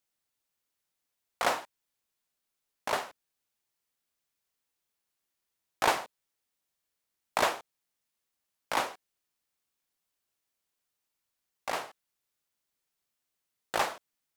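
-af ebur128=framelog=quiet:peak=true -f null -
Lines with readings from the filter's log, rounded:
Integrated loudness:
  I:         -32.5 LUFS
  Threshold: -43.5 LUFS
Loudness range:
  LRA:        10.2 LU
  Threshold: -58.4 LUFS
  LRA low:   -45.1 LUFS
  LRA high:  -34.9 LUFS
True peak:
  Peak:      -10.6 dBFS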